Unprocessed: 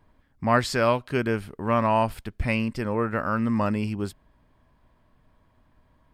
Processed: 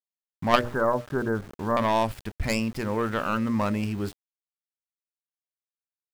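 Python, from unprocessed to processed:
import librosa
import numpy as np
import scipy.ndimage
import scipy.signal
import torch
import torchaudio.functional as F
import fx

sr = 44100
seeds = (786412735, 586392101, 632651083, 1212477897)

p1 = fx.tracing_dist(x, sr, depth_ms=0.21)
p2 = fx.steep_lowpass(p1, sr, hz=1700.0, slope=72, at=(0.61, 1.77))
p3 = fx.hum_notches(p2, sr, base_hz=60, count=10)
p4 = fx.level_steps(p3, sr, step_db=18)
p5 = p3 + (p4 * 10.0 ** (-2.0 / 20.0))
p6 = np.where(np.abs(p5) >= 10.0 ** (-38.5 / 20.0), p5, 0.0)
y = p6 * 10.0 ** (-2.5 / 20.0)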